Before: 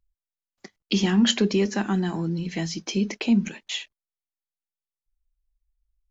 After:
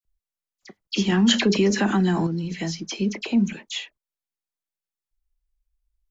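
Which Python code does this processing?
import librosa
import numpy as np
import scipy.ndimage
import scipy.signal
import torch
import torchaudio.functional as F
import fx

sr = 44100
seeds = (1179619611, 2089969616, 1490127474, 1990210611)

y = fx.dispersion(x, sr, late='lows', ms=50.0, hz=2500.0)
y = fx.env_flatten(y, sr, amount_pct=50, at=(1.12, 2.27))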